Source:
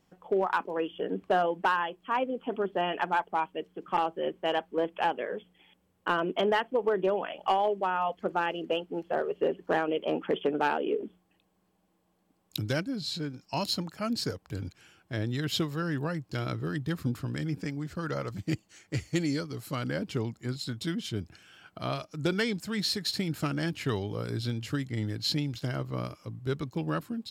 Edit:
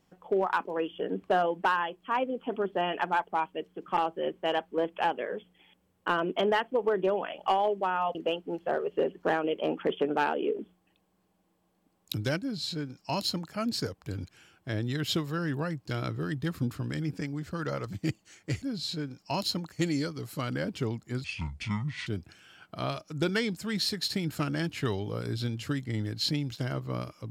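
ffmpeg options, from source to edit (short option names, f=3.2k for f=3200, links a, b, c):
-filter_complex "[0:a]asplit=6[a][b][c][d][e][f];[a]atrim=end=8.152[g];[b]atrim=start=8.588:end=19.062[h];[c]atrim=start=12.848:end=13.952[i];[d]atrim=start=19.058:end=20.584[j];[e]atrim=start=20.58:end=21.1,asetpts=PTS-STARTPTS,asetrate=27783,aresample=44100[k];[f]atrim=start=21.096[l];[g][h]acrossfade=d=0.004:c1=hsin:c2=hsin[m];[m][i]acrossfade=d=0.004:c1=hsin:c2=hsin[n];[n][j]acrossfade=d=0.004:c1=hsin:c2=hsin[o];[o][k]acrossfade=d=0.004:c1=hsin:c2=hsin[p];[p][l]acrossfade=d=0.004:c1=hsin:c2=hsin"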